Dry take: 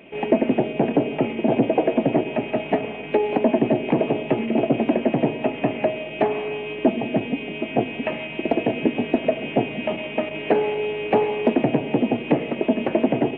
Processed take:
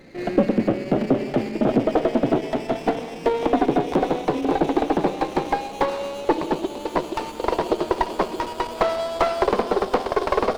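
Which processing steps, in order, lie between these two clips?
gliding tape speed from 83% -> 170%; sliding maximum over 9 samples

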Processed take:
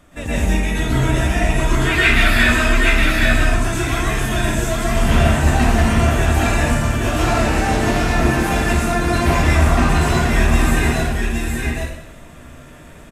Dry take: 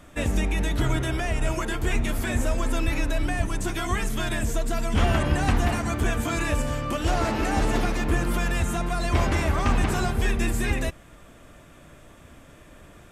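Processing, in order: time-frequency box 1.78–2.53 s, 1.1–5.2 kHz +12 dB; delay 820 ms -3.5 dB; plate-style reverb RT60 0.75 s, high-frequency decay 0.95×, pre-delay 105 ms, DRR -8.5 dB; trim -2 dB

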